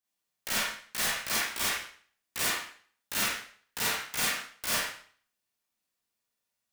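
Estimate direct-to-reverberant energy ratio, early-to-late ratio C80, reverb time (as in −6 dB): −7.0 dB, 6.0 dB, 0.50 s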